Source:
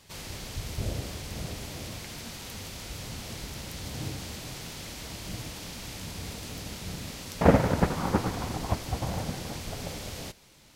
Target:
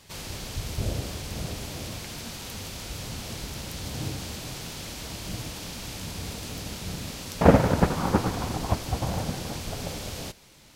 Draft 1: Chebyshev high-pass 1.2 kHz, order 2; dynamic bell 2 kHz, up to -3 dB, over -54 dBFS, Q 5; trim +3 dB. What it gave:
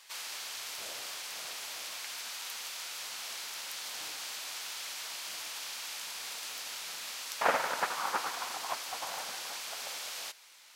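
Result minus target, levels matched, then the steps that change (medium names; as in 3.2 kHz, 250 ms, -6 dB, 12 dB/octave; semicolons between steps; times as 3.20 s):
1 kHz band +2.5 dB
remove: Chebyshev high-pass 1.2 kHz, order 2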